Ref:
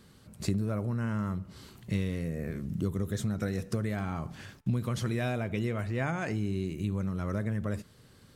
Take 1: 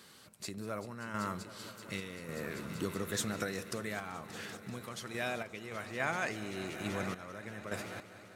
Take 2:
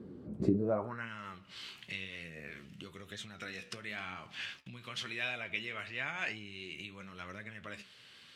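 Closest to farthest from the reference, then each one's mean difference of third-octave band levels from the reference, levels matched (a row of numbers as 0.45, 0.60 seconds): 2, 1; 7.5, 10.0 decibels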